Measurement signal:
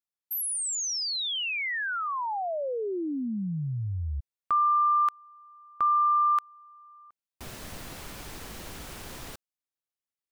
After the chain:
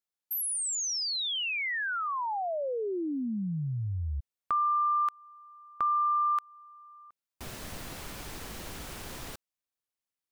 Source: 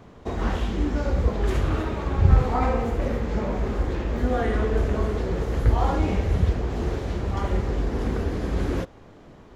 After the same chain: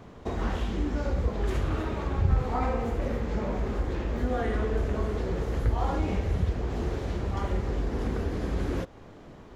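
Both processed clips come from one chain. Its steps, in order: compressor 1.5:1, threshold -32 dBFS

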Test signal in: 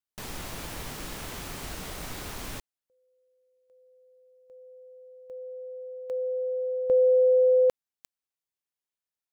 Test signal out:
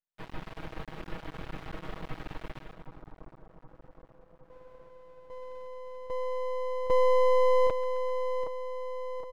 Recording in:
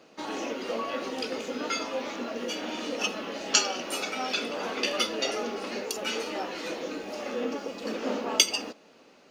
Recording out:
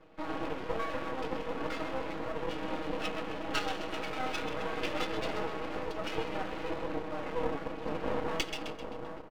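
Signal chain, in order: air absorption 480 m; comb 6.3 ms, depth 90%; split-band echo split 1200 Hz, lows 0.767 s, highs 0.13 s, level -8 dB; half-wave rectifier

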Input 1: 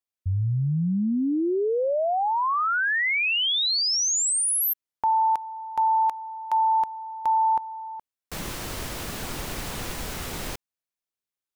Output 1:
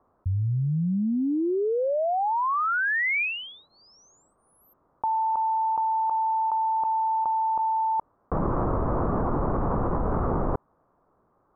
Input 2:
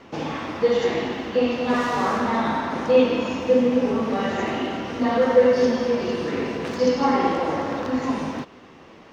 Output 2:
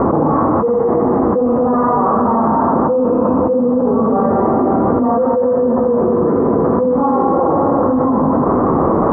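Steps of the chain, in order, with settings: elliptic low-pass 1200 Hz, stop band 70 dB; fast leveller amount 100%; gain -3 dB

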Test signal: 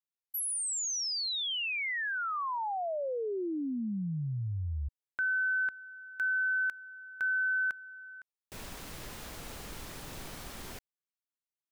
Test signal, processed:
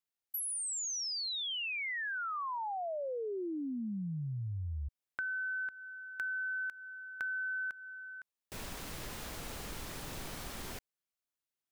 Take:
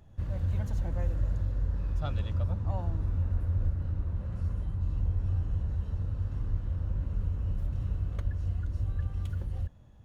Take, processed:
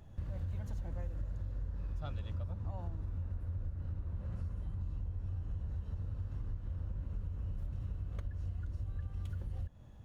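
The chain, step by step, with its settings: compressor 6:1, threshold -37 dBFS; gain +1 dB

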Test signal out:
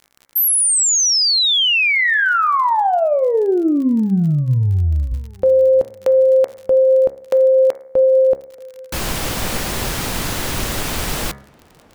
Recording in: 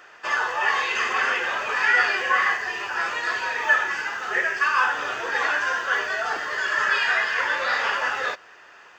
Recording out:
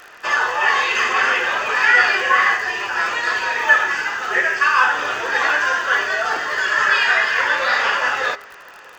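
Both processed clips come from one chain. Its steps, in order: crackle 46/s -36 dBFS; de-hum 68.19 Hz, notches 33; tape echo 0.633 s, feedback 52%, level -23 dB, low-pass 1100 Hz; gain +6 dB

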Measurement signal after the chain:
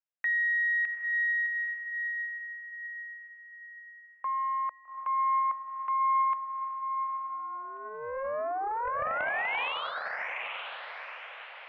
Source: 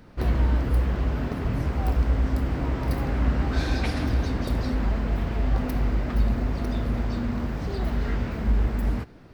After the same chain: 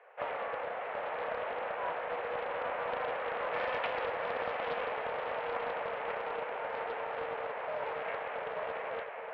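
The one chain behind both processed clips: mistuned SSB +220 Hz 300–2500 Hz; diffused feedback echo 0.828 s, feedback 46%, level -4.5 dB; Doppler distortion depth 0.22 ms; gain -2.5 dB

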